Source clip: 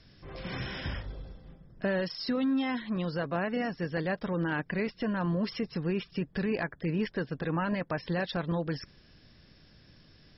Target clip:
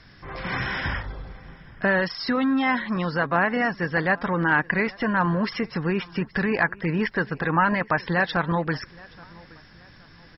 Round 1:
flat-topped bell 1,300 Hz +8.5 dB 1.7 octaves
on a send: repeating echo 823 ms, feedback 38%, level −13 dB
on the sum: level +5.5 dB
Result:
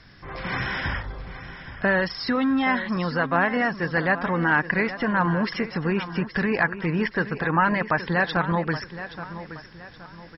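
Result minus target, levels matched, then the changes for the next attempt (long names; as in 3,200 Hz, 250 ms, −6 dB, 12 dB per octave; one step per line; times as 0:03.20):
echo-to-direct +11 dB
change: repeating echo 823 ms, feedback 38%, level −24 dB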